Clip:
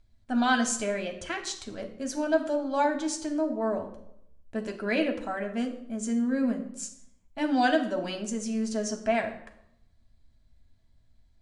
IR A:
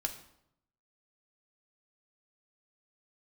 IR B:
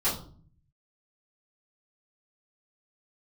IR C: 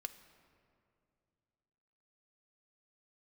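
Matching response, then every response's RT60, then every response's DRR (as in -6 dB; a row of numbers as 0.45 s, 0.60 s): A; 0.75 s, 0.45 s, 2.5 s; 3.0 dB, -13.5 dB, 8.5 dB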